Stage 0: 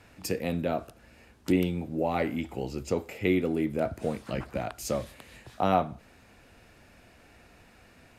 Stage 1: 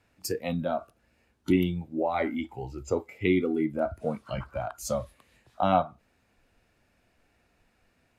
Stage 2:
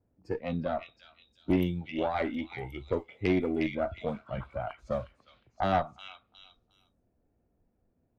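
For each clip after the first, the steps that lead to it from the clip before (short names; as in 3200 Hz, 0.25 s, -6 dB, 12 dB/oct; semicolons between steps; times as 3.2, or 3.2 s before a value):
spectral noise reduction 14 dB; gain +1.5 dB
low-pass opened by the level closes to 490 Hz, open at -22 dBFS; delay with a stepping band-pass 0.359 s, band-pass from 2900 Hz, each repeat 0.7 oct, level -2 dB; tube stage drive 17 dB, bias 0.55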